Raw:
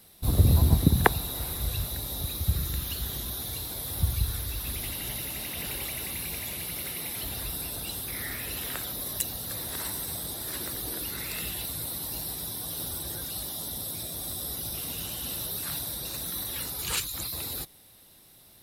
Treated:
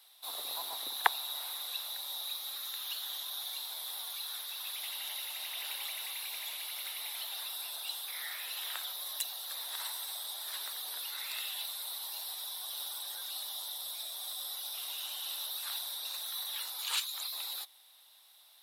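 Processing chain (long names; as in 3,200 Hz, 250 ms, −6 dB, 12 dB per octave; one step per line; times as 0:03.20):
four-pole ladder high-pass 700 Hz, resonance 35%
parametric band 3,600 Hz +10 dB 0.61 octaves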